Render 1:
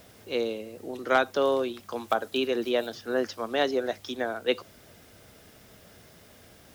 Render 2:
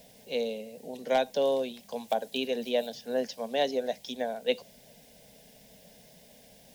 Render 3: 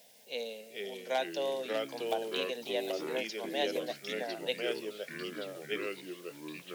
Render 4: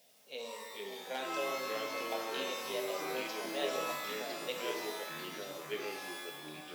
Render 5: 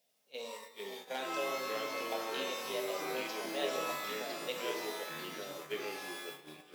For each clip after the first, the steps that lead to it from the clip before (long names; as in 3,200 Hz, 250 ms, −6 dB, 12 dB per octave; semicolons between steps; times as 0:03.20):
phaser with its sweep stopped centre 340 Hz, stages 6
high-pass filter 890 Hz 6 dB per octave; delay with pitch and tempo change per echo 380 ms, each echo −3 semitones, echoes 3; level −2 dB
reverb with rising layers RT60 1.2 s, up +12 semitones, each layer −2 dB, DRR 3 dB; level −6.5 dB
noise gate −45 dBFS, range −12 dB; convolution reverb RT60 3.8 s, pre-delay 134 ms, DRR 19.5 dB